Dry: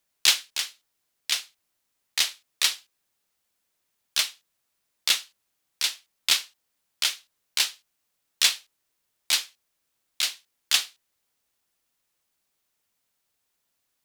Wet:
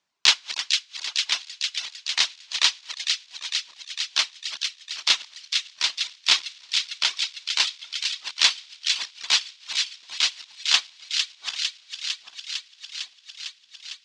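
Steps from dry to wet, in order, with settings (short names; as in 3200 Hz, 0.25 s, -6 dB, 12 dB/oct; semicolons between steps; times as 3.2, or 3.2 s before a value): regenerating reverse delay 0.397 s, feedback 58%, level -11 dB; speaker cabinet 110–6200 Hz, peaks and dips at 130 Hz -4 dB, 500 Hz -5 dB, 1000 Hz +6 dB; on a send: thin delay 0.453 s, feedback 77%, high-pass 1900 Hz, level -4.5 dB; on the sum: reverb removal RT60 1.5 s; gain +3 dB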